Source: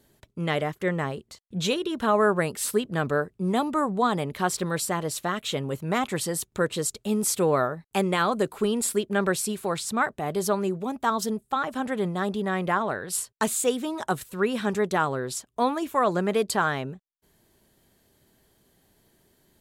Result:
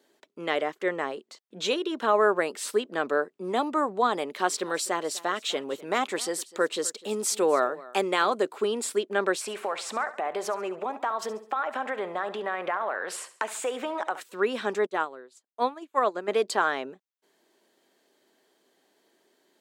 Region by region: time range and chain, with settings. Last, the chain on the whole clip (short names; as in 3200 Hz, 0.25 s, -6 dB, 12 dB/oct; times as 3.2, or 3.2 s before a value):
4.14–8.35 high shelf 4200 Hz +4.5 dB + echo 0.251 s -20.5 dB
9.41–14.21 band shelf 1200 Hz +11 dB 2.7 oct + compressor 4:1, threshold -27 dBFS + feedback echo 69 ms, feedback 42%, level -15 dB
14.86–16.28 notch 5500 Hz, Q 10 + upward expander 2.5:1, over -39 dBFS
whole clip: HPF 290 Hz 24 dB/oct; bell 12000 Hz -13.5 dB 0.72 oct